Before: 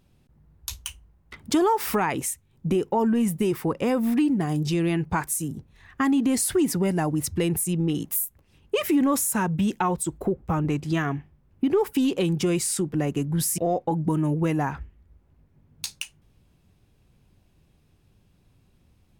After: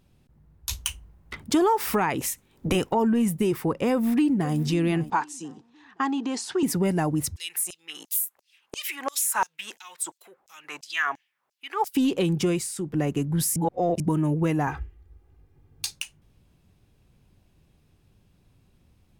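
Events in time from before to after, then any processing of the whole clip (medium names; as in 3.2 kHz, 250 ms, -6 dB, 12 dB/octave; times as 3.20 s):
0.69–1.44 s: gain +5.5 dB
2.20–2.93 s: spectral peaks clipped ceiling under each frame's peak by 17 dB
3.92–4.57 s: echo throw 520 ms, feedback 40%, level -14.5 dB
5.10–6.63 s: cabinet simulation 370–6500 Hz, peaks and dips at 600 Hz -8 dB, 890 Hz +7 dB, 2.1 kHz -7 dB
7.36–11.95 s: LFO high-pass saw down 2.9 Hz 660–6400 Hz
12.48–12.98 s: dip -8.5 dB, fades 0.24 s
13.56–14.00 s: reverse
14.67–15.91 s: comb 2.5 ms, depth 74%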